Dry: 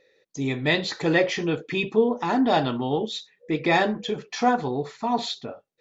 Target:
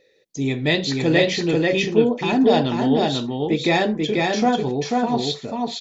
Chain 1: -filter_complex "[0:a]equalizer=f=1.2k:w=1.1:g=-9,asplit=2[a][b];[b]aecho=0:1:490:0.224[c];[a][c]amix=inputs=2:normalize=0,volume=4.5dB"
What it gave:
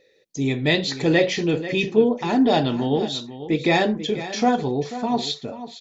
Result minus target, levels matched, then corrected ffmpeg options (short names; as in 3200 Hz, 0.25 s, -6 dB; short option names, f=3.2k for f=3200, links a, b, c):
echo-to-direct -10.5 dB
-filter_complex "[0:a]equalizer=f=1.2k:w=1.1:g=-9,asplit=2[a][b];[b]aecho=0:1:490:0.75[c];[a][c]amix=inputs=2:normalize=0,volume=4.5dB"